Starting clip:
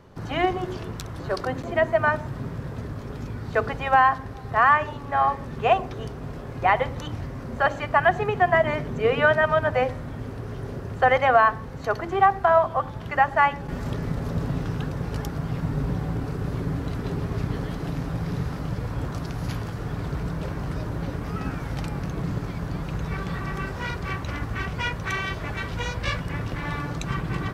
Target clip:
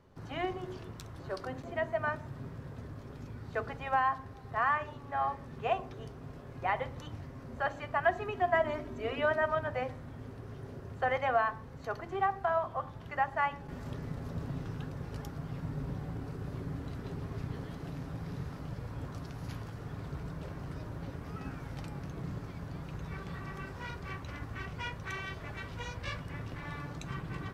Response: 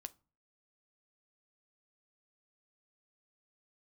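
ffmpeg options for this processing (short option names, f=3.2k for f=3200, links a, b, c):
-filter_complex "[0:a]asettb=1/sr,asplit=3[a][b][c];[a]atrim=end=8.034[d];[b]atrim=start=8.03:end=9.55,asetpts=PTS-STARTPTS,afade=t=in:d=0.004:c=qsin,afade=t=out:st=1.516:d=0.004:c=qsin,aecho=1:1:3.1:0.62,atrim=end_sample=67032[e];[c]atrim=start=9.546[f];[d][e]acrossfade=d=0.004:c1=hsin:c2=qsin[g];[g][f]acrossfade=d=0.004:c1=qsin:c2=hsin[h];[1:a]atrim=start_sample=2205[i];[h][i]afir=irnorm=-1:irlink=0,volume=-6.5dB"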